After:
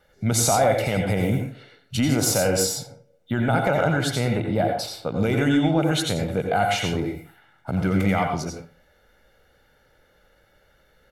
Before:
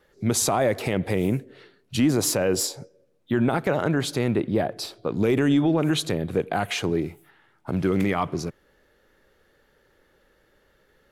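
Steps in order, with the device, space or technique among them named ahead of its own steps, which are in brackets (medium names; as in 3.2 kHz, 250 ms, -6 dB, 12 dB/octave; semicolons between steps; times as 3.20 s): microphone above a desk (comb 1.4 ms, depth 56%; reverberation RT60 0.35 s, pre-delay 80 ms, DRR 2.5 dB)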